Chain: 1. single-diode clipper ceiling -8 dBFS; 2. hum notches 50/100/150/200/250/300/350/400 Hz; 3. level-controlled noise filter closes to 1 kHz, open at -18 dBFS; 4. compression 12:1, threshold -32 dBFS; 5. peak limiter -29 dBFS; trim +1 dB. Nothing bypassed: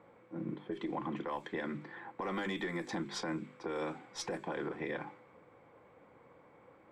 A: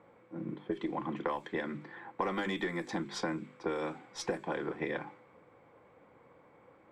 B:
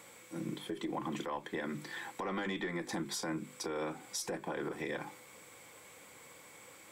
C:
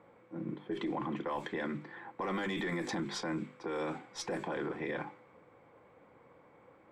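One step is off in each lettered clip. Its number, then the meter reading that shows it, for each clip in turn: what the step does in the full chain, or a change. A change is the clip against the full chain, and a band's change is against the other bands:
5, crest factor change +8.0 dB; 3, 8 kHz band +7.5 dB; 4, mean gain reduction 7.0 dB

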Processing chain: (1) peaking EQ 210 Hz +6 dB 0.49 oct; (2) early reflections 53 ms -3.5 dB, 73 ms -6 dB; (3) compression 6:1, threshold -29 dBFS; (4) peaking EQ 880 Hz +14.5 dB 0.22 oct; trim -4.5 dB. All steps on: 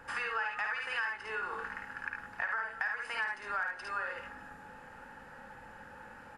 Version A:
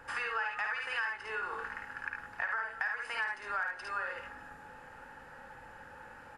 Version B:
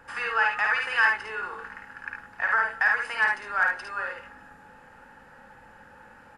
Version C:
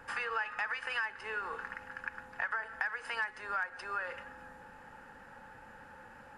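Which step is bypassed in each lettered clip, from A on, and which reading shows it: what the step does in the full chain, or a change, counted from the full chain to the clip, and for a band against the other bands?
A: 1, 250 Hz band -3.0 dB; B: 3, mean gain reduction 4.0 dB; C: 2, momentary loudness spread change +1 LU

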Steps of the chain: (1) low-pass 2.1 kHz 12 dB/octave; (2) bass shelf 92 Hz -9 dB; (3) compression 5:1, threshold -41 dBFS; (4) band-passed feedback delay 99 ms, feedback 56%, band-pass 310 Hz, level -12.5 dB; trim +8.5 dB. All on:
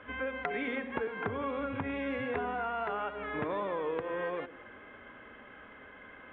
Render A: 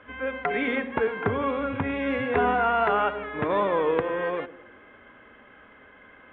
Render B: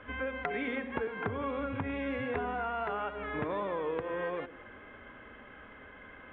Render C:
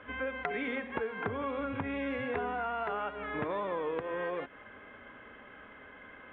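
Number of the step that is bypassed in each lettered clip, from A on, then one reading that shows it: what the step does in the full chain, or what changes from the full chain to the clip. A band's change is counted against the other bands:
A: 3, momentary loudness spread change -9 LU; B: 2, 125 Hz band +3.0 dB; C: 4, echo-to-direct -19.0 dB to none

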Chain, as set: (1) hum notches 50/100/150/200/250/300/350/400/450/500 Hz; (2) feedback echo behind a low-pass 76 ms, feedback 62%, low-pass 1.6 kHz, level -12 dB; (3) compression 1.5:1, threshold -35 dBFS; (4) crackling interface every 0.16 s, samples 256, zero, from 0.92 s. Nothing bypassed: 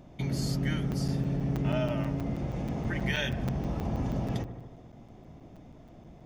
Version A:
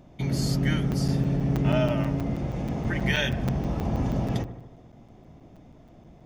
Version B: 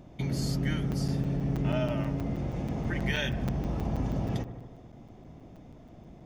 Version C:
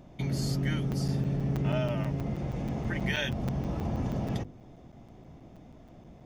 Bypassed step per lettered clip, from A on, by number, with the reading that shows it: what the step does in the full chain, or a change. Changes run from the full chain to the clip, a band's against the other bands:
3, mean gain reduction 3.0 dB; 1, momentary loudness spread change +1 LU; 2, momentary loudness spread change -15 LU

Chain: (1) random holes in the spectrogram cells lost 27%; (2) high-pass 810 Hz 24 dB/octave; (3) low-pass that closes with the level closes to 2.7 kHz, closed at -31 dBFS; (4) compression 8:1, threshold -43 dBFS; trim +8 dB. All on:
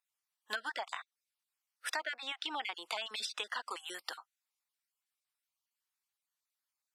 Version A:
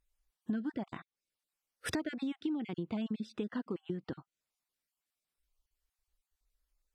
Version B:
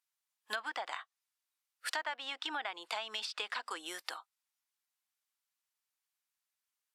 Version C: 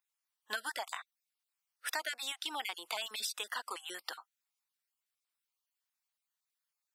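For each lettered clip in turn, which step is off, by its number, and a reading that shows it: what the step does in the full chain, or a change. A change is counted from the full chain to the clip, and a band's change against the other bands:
2, 250 Hz band +30.0 dB; 1, 8 kHz band -1.5 dB; 3, 8 kHz band +6.0 dB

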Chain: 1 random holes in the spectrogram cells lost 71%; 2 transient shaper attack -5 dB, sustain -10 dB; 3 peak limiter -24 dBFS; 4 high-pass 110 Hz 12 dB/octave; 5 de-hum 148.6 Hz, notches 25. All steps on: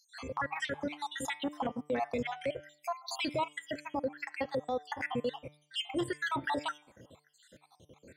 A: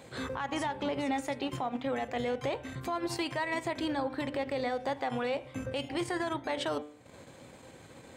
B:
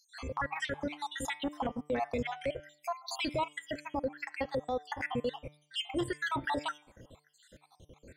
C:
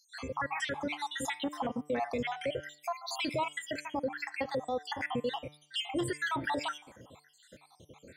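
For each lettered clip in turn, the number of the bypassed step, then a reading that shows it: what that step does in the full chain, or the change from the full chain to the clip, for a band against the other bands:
1, 125 Hz band +3.5 dB; 4, 125 Hz band +2.5 dB; 2, 8 kHz band +2.0 dB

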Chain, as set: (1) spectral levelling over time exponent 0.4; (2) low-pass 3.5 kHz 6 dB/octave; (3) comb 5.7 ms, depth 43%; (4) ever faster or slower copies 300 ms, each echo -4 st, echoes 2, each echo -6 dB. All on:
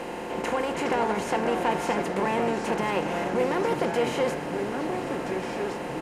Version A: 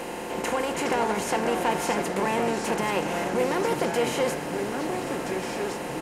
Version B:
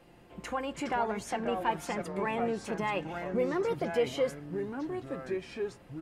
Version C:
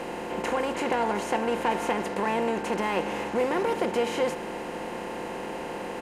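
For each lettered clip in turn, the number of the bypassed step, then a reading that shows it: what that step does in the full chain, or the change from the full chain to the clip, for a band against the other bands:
2, 8 kHz band +7.0 dB; 1, momentary loudness spread change +2 LU; 4, momentary loudness spread change +3 LU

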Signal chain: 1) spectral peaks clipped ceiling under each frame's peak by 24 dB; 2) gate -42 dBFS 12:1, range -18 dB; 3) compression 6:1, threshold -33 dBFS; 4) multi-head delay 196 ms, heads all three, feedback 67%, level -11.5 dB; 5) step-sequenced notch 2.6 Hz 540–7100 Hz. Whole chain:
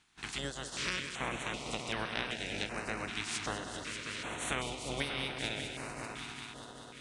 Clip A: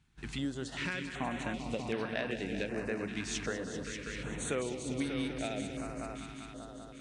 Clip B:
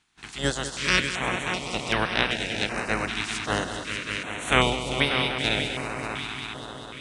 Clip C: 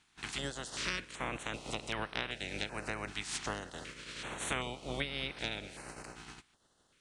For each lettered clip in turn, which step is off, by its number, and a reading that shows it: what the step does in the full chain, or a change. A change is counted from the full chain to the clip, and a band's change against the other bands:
1, 250 Hz band +9.0 dB; 3, mean gain reduction 7.0 dB; 4, momentary loudness spread change +4 LU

